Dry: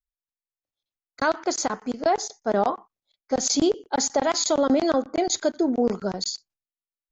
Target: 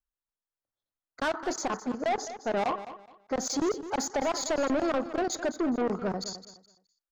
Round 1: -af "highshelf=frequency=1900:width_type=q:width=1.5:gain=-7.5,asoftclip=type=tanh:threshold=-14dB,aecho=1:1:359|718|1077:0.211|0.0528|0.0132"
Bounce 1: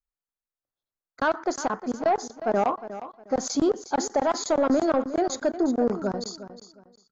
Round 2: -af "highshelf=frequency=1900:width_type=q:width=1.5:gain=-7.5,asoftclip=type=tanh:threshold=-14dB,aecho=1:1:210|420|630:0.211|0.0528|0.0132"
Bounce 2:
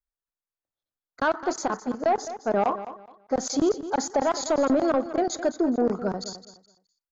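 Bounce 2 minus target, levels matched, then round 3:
soft clipping: distortion −11 dB
-af "highshelf=frequency=1900:width_type=q:width=1.5:gain=-7.5,asoftclip=type=tanh:threshold=-24dB,aecho=1:1:210|420|630:0.211|0.0528|0.0132"

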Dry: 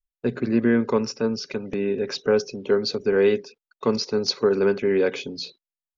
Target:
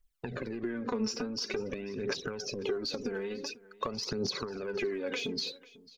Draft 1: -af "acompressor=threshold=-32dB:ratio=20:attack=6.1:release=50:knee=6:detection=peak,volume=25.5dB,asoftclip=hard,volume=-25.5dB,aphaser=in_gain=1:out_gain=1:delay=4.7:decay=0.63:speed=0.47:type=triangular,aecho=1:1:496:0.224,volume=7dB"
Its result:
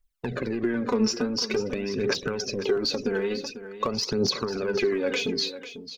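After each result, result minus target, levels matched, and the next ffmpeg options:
downward compressor: peak gain reduction −9 dB; echo-to-direct +8.5 dB
-af "acompressor=threshold=-41.5dB:ratio=20:attack=6.1:release=50:knee=6:detection=peak,volume=25.5dB,asoftclip=hard,volume=-25.5dB,aphaser=in_gain=1:out_gain=1:delay=4.7:decay=0.63:speed=0.47:type=triangular,aecho=1:1:496:0.224,volume=7dB"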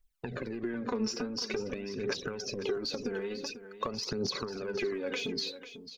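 echo-to-direct +8.5 dB
-af "acompressor=threshold=-41.5dB:ratio=20:attack=6.1:release=50:knee=6:detection=peak,volume=25.5dB,asoftclip=hard,volume=-25.5dB,aphaser=in_gain=1:out_gain=1:delay=4.7:decay=0.63:speed=0.47:type=triangular,aecho=1:1:496:0.0841,volume=7dB"

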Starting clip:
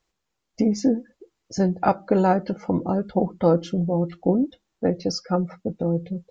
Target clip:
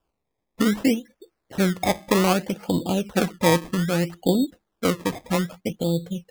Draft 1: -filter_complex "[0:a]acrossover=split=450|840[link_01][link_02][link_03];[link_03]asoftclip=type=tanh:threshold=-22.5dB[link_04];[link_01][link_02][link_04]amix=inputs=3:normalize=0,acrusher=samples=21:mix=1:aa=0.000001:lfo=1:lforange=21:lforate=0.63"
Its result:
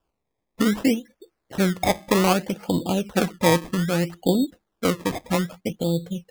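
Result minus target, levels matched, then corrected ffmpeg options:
soft clipping: distortion −9 dB
-filter_complex "[0:a]acrossover=split=450|840[link_01][link_02][link_03];[link_03]asoftclip=type=tanh:threshold=-33.5dB[link_04];[link_01][link_02][link_04]amix=inputs=3:normalize=0,acrusher=samples=21:mix=1:aa=0.000001:lfo=1:lforange=21:lforate=0.63"

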